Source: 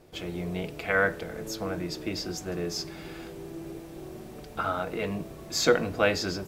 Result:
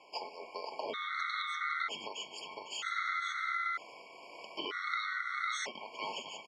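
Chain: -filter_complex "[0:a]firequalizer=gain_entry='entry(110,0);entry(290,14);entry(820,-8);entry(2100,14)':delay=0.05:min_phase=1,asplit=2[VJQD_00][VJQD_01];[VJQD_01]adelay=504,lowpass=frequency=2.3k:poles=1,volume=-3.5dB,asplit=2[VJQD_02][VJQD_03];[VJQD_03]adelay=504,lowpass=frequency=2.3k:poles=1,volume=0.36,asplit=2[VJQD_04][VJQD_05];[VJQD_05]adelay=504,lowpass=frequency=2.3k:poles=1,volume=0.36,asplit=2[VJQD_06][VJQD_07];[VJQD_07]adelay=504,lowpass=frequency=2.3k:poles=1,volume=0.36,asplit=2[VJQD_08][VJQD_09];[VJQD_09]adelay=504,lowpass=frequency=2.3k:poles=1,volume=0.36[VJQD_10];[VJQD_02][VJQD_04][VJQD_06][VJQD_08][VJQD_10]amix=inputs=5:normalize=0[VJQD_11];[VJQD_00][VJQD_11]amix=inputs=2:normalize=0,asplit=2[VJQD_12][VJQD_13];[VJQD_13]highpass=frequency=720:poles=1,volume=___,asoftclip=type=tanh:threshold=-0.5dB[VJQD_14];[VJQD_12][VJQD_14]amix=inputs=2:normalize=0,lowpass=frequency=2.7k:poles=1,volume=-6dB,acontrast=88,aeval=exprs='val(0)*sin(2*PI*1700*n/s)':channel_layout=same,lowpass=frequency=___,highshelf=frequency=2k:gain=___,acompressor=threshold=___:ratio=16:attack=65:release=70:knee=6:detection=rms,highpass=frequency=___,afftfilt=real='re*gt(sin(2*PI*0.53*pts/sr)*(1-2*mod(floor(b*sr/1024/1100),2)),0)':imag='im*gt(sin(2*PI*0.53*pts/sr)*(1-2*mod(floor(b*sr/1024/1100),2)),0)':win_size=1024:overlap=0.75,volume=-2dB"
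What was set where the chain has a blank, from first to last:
8dB, 4.7k, -6.5, -33dB, 450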